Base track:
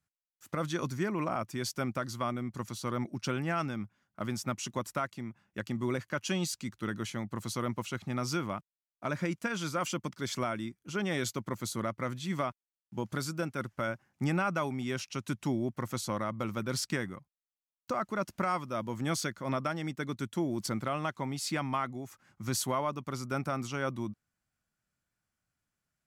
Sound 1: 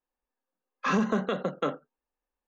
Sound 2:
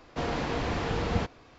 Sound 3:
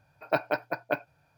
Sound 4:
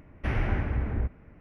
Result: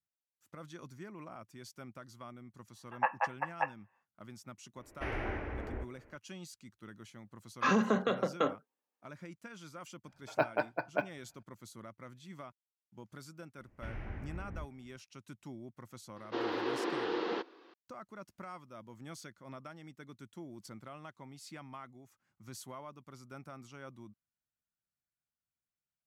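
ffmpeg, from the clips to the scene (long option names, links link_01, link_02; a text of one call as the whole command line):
ffmpeg -i bed.wav -i cue0.wav -i cue1.wav -i cue2.wav -i cue3.wav -filter_complex "[3:a]asplit=2[link_01][link_02];[4:a]asplit=2[link_03][link_04];[0:a]volume=-15.5dB[link_05];[link_01]highpass=frequency=280:width_type=q:width=0.5412,highpass=frequency=280:width_type=q:width=1.307,lowpass=frequency=2300:width_type=q:width=0.5176,lowpass=frequency=2300:width_type=q:width=0.7071,lowpass=frequency=2300:width_type=q:width=1.932,afreqshift=220[link_06];[link_03]lowshelf=frequency=260:width_type=q:width=1.5:gain=-9[link_07];[1:a]highpass=180[link_08];[link_02]lowpass=frequency=2900:poles=1[link_09];[2:a]highpass=frequency=320:width=0.5412,highpass=frequency=320:width=1.3066,equalizer=frequency=350:width_type=q:width=4:gain=10,equalizer=frequency=660:width_type=q:width=4:gain=-9,equalizer=frequency=2300:width_type=q:width=4:gain=-6,lowpass=frequency=4600:width=0.5412,lowpass=frequency=4600:width=1.3066[link_10];[link_06]atrim=end=1.37,asetpts=PTS-STARTPTS,volume=-4dB,afade=type=in:duration=0.1,afade=type=out:start_time=1.27:duration=0.1,adelay=2700[link_11];[link_07]atrim=end=1.4,asetpts=PTS-STARTPTS,volume=-4.5dB,afade=type=in:duration=0.004:curve=hsin,afade=type=out:start_time=1.396:duration=0.004:curve=hsin,adelay=210357S[link_12];[link_08]atrim=end=2.47,asetpts=PTS-STARTPTS,volume=-1.5dB,afade=type=in:duration=0.004:curve=hsin,afade=type=out:start_time=2.466:duration=0.004:curve=hsin,adelay=6780[link_13];[link_09]atrim=end=1.37,asetpts=PTS-STARTPTS,volume=-3.5dB,afade=type=in:duration=0.004:curve=hsin,afade=type=out:start_time=1.366:duration=0.004:curve=hsin,adelay=10060[link_14];[link_04]atrim=end=1.4,asetpts=PTS-STARTPTS,volume=-15.5dB,afade=type=in:duration=0.004:curve=hsin,afade=type=out:start_time=1.396:duration=0.004:curve=hsin,adelay=13580[link_15];[link_10]atrim=end=1.58,asetpts=PTS-STARTPTS,volume=-3dB,afade=type=in:duration=0.004:curve=hsin,afade=type=out:start_time=1.576:duration=0.004:curve=hsin,adelay=16160[link_16];[link_05][link_11][link_12][link_13][link_14][link_15][link_16]amix=inputs=7:normalize=0" out.wav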